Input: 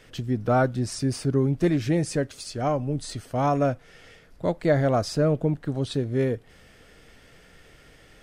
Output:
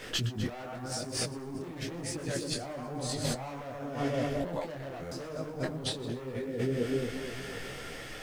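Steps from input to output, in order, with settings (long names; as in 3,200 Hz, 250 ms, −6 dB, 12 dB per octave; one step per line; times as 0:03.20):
low-shelf EQ 150 Hz −7 dB
mains-hum notches 50/100/150 Hz
on a send: echo with a time of its own for lows and highs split 580 Hz, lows 244 ms, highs 124 ms, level −6 dB
on the sum: hard clipping −25.5 dBFS, distortion −7 dB
compressor whose output falls as the input rises −39 dBFS, ratio −1
bit-depth reduction 12 bits, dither triangular
buffer that repeats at 0:05.01, samples 512, times 8
micro pitch shift up and down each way 32 cents
level +6.5 dB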